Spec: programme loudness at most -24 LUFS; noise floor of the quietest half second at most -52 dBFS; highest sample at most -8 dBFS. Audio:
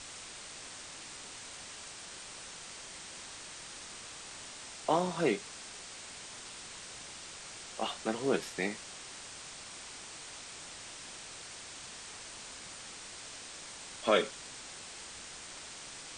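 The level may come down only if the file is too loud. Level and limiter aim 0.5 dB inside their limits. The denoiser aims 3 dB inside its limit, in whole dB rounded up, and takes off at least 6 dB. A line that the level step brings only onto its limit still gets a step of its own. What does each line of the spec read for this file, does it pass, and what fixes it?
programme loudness -39.0 LUFS: OK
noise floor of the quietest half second -47 dBFS: fail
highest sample -14.5 dBFS: OK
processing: denoiser 8 dB, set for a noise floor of -47 dBFS

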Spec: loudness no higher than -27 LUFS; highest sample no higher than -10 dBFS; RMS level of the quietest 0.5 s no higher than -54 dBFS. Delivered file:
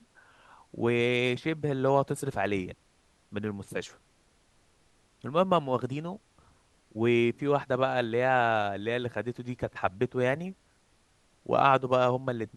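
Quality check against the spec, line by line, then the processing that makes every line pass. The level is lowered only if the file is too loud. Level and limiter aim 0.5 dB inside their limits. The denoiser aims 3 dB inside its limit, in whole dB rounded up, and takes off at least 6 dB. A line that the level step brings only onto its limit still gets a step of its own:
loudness -28.5 LUFS: OK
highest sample -9.0 dBFS: fail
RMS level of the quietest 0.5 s -66 dBFS: OK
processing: limiter -10.5 dBFS

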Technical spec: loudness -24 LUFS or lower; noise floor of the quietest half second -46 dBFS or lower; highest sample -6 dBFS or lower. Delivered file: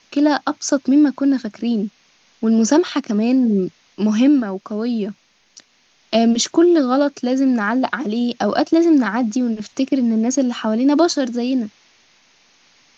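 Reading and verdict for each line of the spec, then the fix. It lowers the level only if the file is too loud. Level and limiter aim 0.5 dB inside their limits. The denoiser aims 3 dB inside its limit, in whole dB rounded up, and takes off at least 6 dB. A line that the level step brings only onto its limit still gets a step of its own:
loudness -18.0 LUFS: fail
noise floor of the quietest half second -58 dBFS: OK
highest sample -3.0 dBFS: fail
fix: gain -6.5 dB

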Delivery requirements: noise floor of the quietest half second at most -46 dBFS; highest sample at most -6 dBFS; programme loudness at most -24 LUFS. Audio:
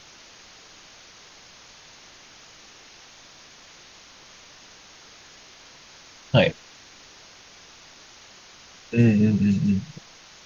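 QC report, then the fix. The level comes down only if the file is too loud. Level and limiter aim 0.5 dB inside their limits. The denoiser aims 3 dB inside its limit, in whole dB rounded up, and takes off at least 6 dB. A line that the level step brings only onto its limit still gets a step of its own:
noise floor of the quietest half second -49 dBFS: OK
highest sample -5.5 dBFS: fail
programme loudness -21.5 LUFS: fail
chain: gain -3 dB

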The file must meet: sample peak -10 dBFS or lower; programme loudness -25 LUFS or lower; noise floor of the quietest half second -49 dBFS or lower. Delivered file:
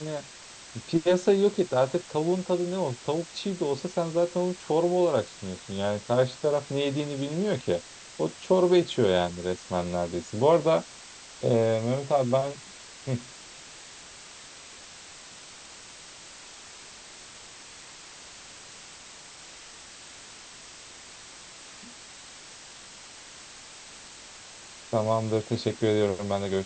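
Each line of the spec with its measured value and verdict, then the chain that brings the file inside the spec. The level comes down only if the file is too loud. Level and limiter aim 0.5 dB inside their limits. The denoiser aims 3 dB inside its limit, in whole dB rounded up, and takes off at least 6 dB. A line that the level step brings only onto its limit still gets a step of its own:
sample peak -9.5 dBFS: fail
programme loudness -27.0 LUFS: OK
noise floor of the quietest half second -47 dBFS: fail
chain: denoiser 6 dB, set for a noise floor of -47 dBFS; limiter -10.5 dBFS

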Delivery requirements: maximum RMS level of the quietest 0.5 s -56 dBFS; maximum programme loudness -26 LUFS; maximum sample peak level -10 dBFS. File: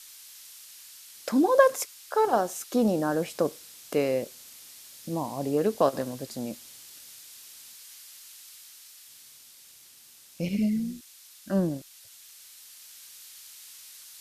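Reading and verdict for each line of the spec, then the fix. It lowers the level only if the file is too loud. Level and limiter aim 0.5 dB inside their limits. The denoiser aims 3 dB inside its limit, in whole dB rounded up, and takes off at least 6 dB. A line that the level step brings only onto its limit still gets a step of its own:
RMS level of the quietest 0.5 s -53 dBFS: fail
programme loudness -27.5 LUFS: OK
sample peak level -5.5 dBFS: fail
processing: denoiser 6 dB, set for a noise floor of -53 dBFS; limiter -10.5 dBFS

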